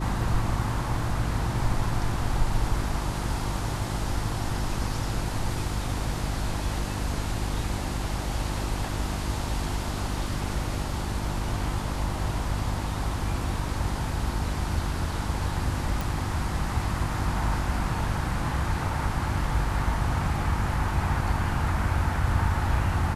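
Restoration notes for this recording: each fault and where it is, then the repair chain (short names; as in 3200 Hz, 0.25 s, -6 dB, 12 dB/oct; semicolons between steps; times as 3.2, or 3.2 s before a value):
hum 50 Hz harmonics 7 -32 dBFS
16.01 pop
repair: de-click; de-hum 50 Hz, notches 7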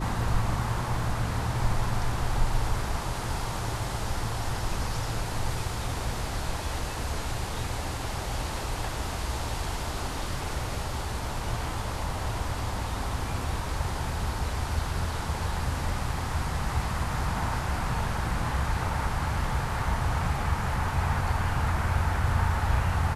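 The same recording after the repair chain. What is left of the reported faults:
none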